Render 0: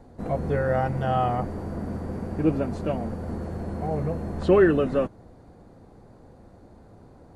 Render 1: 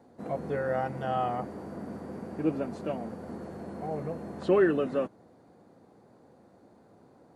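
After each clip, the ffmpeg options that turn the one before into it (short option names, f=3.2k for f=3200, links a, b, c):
-af "highpass=180,volume=-5dB"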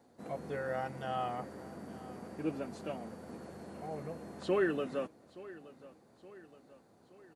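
-af "highshelf=f=2k:g=10,aecho=1:1:872|1744|2616|3488:0.119|0.063|0.0334|0.0177,volume=-8dB"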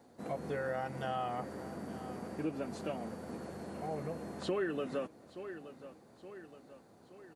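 -af "acompressor=threshold=-37dB:ratio=3,volume=3.5dB"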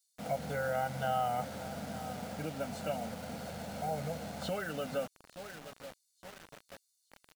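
-filter_complex "[0:a]aecho=1:1:1.4:0.91,acrossover=split=4400[a][b];[a]acrusher=bits=7:mix=0:aa=0.000001[c];[c][b]amix=inputs=2:normalize=0"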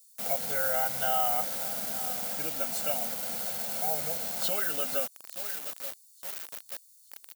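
-af "aemphasis=mode=production:type=riaa,volume=2.5dB"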